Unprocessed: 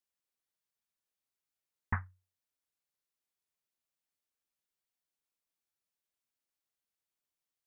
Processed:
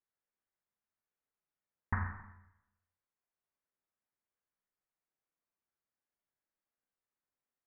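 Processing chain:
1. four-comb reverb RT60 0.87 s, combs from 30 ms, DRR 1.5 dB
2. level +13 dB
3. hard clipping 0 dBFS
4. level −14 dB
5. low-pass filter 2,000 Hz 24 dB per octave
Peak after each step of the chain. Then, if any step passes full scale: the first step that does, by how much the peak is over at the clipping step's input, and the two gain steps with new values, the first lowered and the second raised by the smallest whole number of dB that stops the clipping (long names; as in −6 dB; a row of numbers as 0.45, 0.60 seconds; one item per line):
−19.0, −6.0, −6.0, −20.0, −20.5 dBFS
no step passes full scale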